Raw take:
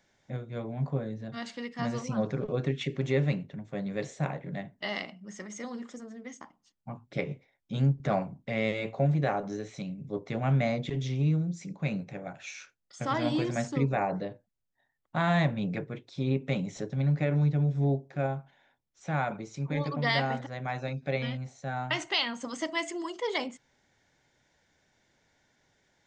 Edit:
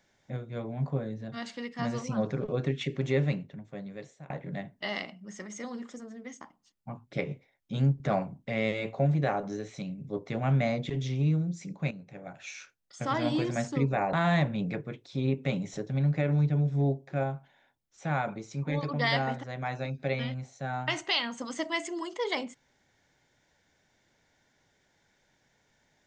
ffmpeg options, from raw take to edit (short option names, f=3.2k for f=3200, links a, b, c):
-filter_complex "[0:a]asplit=4[a][b][c][d];[a]atrim=end=4.3,asetpts=PTS-STARTPTS,afade=t=out:st=3.2:d=1.1:silence=0.0794328[e];[b]atrim=start=4.3:end=11.91,asetpts=PTS-STARTPTS,afade=t=in:d=0.004:c=hsin:silence=0.0794328,afade=t=out:st=7.606:d=0.004:c=hsin:silence=0.199526[f];[c]atrim=start=11.91:end=14.132,asetpts=PTS-STARTPTS,afade=t=in:d=0.61:silence=0.199526[g];[d]atrim=start=15.158[h];[e][f][g]concat=n=3:v=0:a=1[i];[i][h]acrossfade=d=0.004:c1=hsin:c2=hsin"